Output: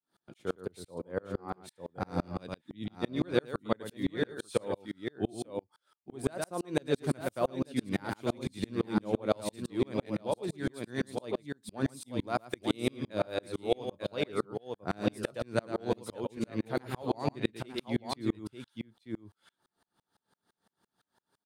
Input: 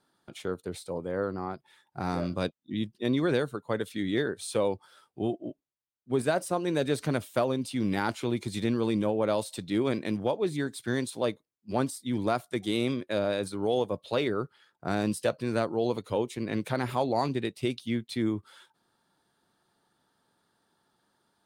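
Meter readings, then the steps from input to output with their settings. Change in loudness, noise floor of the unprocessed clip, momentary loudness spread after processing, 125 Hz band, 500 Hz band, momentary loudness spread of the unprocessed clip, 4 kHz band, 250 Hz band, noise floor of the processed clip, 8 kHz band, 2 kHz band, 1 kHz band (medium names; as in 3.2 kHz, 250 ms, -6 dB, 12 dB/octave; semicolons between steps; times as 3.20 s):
-5.0 dB, -77 dBFS, 10 LU, -4.5 dB, -4.5 dB, 8 LU, -4.5 dB, -4.0 dB, under -85 dBFS, -6.0 dB, -5.0 dB, -5.0 dB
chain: on a send: multi-tap echo 112/897 ms -7.5/-7 dB; on the sum: sawtooth tremolo in dB swelling 5.9 Hz, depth 37 dB; trim +3.5 dB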